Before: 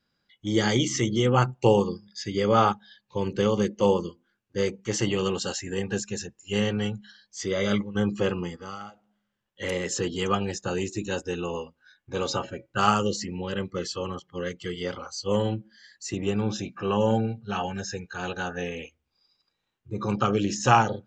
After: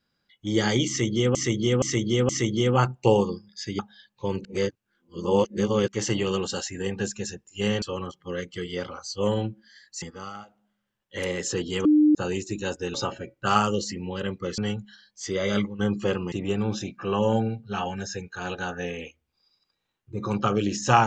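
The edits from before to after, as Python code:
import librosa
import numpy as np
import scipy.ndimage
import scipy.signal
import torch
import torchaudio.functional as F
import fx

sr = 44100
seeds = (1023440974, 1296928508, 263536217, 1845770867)

y = fx.edit(x, sr, fx.repeat(start_s=0.88, length_s=0.47, count=4),
    fx.cut(start_s=2.38, length_s=0.33),
    fx.reverse_span(start_s=3.37, length_s=1.43),
    fx.swap(start_s=6.74, length_s=1.74, other_s=13.9, other_length_s=2.2),
    fx.bleep(start_s=10.31, length_s=0.3, hz=302.0, db=-14.0),
    fx.cut(start_s=11.4, length_s=0.86), tone=tone)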